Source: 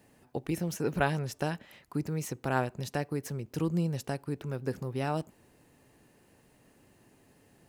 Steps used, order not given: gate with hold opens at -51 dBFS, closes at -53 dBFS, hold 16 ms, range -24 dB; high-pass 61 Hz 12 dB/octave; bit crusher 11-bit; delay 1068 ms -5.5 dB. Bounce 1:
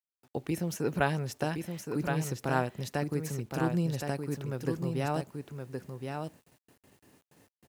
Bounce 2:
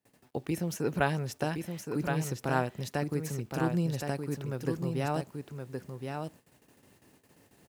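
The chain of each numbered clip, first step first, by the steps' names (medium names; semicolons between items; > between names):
delay > gate with hold > high-pass > bit crusher; bit crusher > delay > gate with hold > high-pass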